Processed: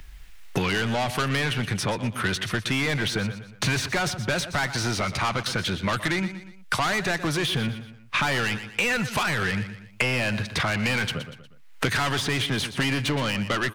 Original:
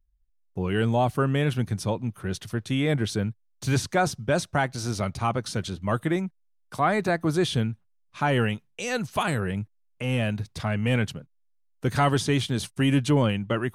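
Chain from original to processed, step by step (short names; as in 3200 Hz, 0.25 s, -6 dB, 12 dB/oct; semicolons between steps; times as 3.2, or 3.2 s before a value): bell 2100 Hz +14 dB 2.3 oct; in parallel at +1.5 dB: limiter -13 dBFS, peak gain reduction 11 dB; on the sum: soft clip -16.5 dBFS, distortion -7 dB; feedback echo 0.119 s, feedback 26%, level -14 dB; three-band squash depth 100%; gain -5 dB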